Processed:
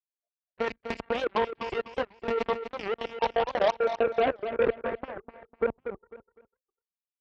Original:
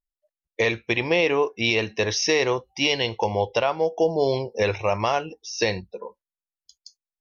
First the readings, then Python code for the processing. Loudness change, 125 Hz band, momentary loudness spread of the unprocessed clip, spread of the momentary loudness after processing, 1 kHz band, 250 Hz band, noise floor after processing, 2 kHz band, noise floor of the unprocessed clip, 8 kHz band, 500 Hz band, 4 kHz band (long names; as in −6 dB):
−6.5 dB, −17.0 dB, 8 LU, 12 LU, −3.0 dB, −9.0 dB, below −85 dBFS, −10.5 dB, below −85 dBFS, can't be measured, −5.0 dB, −14.5 dB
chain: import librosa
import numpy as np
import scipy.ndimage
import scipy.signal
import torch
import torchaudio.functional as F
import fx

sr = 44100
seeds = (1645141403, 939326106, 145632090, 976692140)

y = fx.lpc_monotone(x, sr, seeds[0], pitch_hz=230.0, order=16)
y = fx.dereverb_blind(y, sr, rt60_s=1.5)
y = fx.high_shelf(y, sr, hz=2700.0, db=4.0)
y = fx.level_steps(y, sr, step_db=13)
y = fx.filter_sweep_lowpass(y, sr, from_hz=1100.0, to_hz=430.0, start_s=2.94, end_s=5.17, q=1.7)
y = fx.cheby_harmonics(y, sr, harmonics=(3, 5, 7, 8), levels_db=(-43, -30, -15, -38), full_scale_db=-14.0)
y = scipy.signal.sosfilt(scipy.signal.butter(2, 40.0, 'highpass', fs=sr, output='sos'), y)
y = fx.echo_feedback(y, sr, ms=249, feedback_pct=27, wet_db=-9.0)
y = fx.record_warp(y, sr, rpm=78.0, depth_cents=250.0)